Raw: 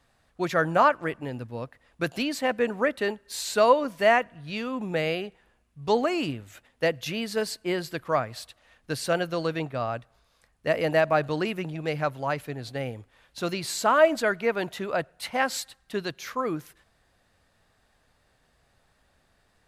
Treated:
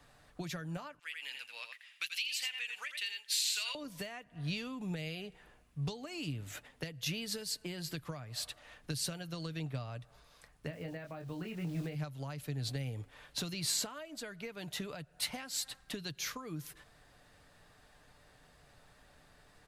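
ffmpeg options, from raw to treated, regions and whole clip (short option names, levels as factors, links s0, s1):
-filter_complex "[0:a]asettb=1/sr,asplit=3[s0][s1][s2];[s0]atrim=end=0.994[s3];[s1]atrim=start=0.99:end=3.75,asetpts=PTS-STARTPTS,afade=t=in:d=0.004:c=qsin,afade=t=out:st=2.756:d=0.004:c=qsin,highpass=f=2600:t=q:w=2.6,aecho=1:1:84:0.422,atrim=end_sample=121716[s4];[s2]atrim=start=3.746[s5];[s3][s4]acrossfade=d=0.004:c1=hsin:c2=qsin[s6];[s6][s5]acrossfade=d=0.004:c1=qsin:c2=hsin,asettb=1/sr,asplit=3[s7][s8][s9];[s7]atrim=end=10.674[s10];[s8]atrim=start=10.67:end=11.95,asetpts=PTS-STARTPTS,afade=t=in:d=0.004:c=qsin,afade=t=out:st=1.276:d=0.004:c=qsin,lowpass=2000,aeval=exprs='val(0)*gte(abs(val(0)),0.00501)':c=same,asplit=2[s11][s12];[s12]adelay=23,volume=0.596[s13];[s11][s13]amix=inputs=2:normalize=0,atrim=end_sample=56448[s14];[s9]atrim=start=11.946[s15];[s10][s14]acrossfade=d=0.004:c1=hsin:c2=qsin[s16];[s16][s15]acrossfade=d=0.004:c1=qsin:c2=hsin,acompressor=threshold=0.0224:ratio=12,aecho=1:1:6.8:0.33,acrossover=split=190|3000[s17][s18][s19];[s18]acompressor=threshold=0.00398:ratio=10[s20];[s17][s20][s19]amix=inputs=3:normalize=0,volume=1.5"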